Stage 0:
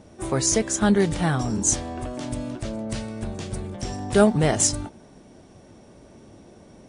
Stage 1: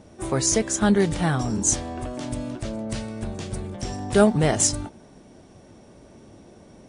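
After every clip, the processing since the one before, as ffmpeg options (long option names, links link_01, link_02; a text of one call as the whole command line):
ffmpeg -i in.wav -af anull out.wav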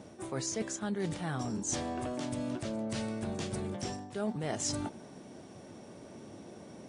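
ffmpeg -i in.wav -filter_complex "[0:a]acrossover=split=8000[link_01][link_02];[link_02]acompressor=threshold=-43dB:ratio=4:attack=1:release=60[link_03];[link_01][link_03]amix=inputs=2:normalize=0,highpass=120,areverse,acompressor=threshold=-32dB:ratio=8,areverse" out.wav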